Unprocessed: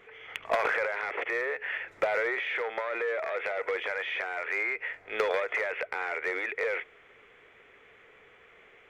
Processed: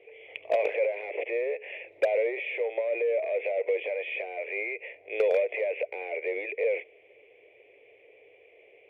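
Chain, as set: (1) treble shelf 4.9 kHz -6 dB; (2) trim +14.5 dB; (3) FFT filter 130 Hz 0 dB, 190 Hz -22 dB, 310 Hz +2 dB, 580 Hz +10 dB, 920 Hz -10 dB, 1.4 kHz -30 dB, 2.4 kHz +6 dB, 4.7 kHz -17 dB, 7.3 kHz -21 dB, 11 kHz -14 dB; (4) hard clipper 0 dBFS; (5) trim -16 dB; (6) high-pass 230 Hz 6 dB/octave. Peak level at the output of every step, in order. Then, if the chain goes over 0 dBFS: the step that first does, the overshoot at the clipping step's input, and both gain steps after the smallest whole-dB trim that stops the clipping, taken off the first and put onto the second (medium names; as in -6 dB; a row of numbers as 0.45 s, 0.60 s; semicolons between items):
-18.0 dBFS, -3.5 dBFS, +6.5 dBFS, 0.0 dBFS, -16.0 dBFS, -13.5 dBFS; step 3, 6.5 dB; step 2 +7.5 dB, step 5 -9 dB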